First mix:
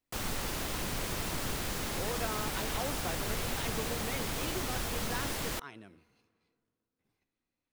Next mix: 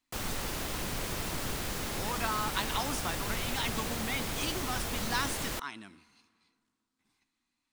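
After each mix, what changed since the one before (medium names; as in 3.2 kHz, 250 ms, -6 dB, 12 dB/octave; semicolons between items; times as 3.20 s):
speech: add graphic EQ 125/250/500/1000/2000/4000/8000 Hz -5/+8/-10/+9/+4/+8/+12 dB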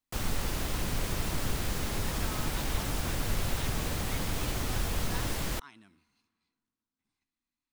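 speech -11.5 dB; master: add bass shelf 150 Hz +8.5 dB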